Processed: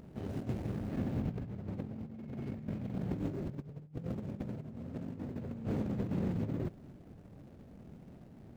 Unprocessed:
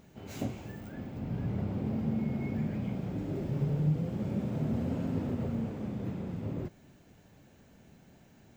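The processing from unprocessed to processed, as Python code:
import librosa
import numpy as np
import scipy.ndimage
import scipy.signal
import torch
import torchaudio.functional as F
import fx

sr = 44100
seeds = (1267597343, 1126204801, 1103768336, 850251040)

y = scipy.signal.medfilt(x, 41)
y = fx.over_compress(y, sr, threshold_db=-38.0, ratio=-0.5)
y = y * librosa.db_to_amplitude(1.0)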